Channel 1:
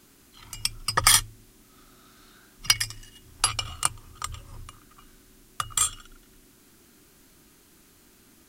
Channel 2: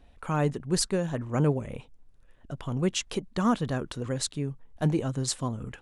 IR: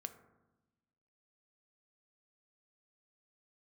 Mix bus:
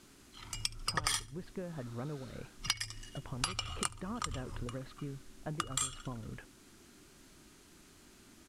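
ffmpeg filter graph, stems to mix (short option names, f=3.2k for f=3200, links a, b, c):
-filter_complex "[0:a]lowpass=9.2k,volume=-1.5dB,asplit=2[a][b];[b]volume=-24dB[c];[1:a]lowpass=f=2.6k:w=0.5412,lowpass=f=2.6k:w=1.3066,acompressor=threshold=-34dB:ratio=6,agate=range=-33dB:threshold=-44dB:ratio=3:detection=peak,adelay=650,volume=-4.5dB[d];[c]aecho=0:1:71|142|213:1|0.21|0.0441[e];[a][d][e]amix=inputs=3:normalize=0,acompressor=threshold=-32dB:ratio=4"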